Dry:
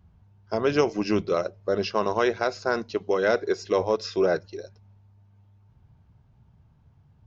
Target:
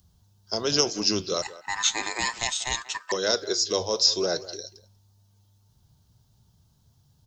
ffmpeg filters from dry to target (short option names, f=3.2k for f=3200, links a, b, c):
-filter_complex "[0:a]acrossover=split=460|1400[a][b][c];[c]aexciter=amount=13.4:drive=3.4:freq=3.5k[d];[a][b][d]amix=inputs=3:normalize=0,flanger=delay=1.4:depth=10:regen=84:speed=0.38:shape=triangular,asettb=1/sr,asplit=3[e][f][g];[e]atrim=end=1.424[h];[f]atrim=start=1.42:end=3.12,asetpts=PTS-STARTPTS,afade=t=in:d=0.004:c=qsin,afade=t=out:st=1.696:d=0.004:c=qsin,aeval=exprs='val(0)*sin(2*PI*1400*n/s)':c=same[i];[g]atrim=start=3.116[j];[h][i]acrossfade=d=0.004:c1=hsin:c2=qsin[k];[k][j]acrossfade=d=0.004:c1=qsin:c2=hsin,asplit=2[l][m];[m]adelay=190,highpass=300,lowpass=3.4k,asoftclip=type=hard:threshold=-15dB,volume=-16dB[n];[l][n]amix=inputs=2:normalize=0"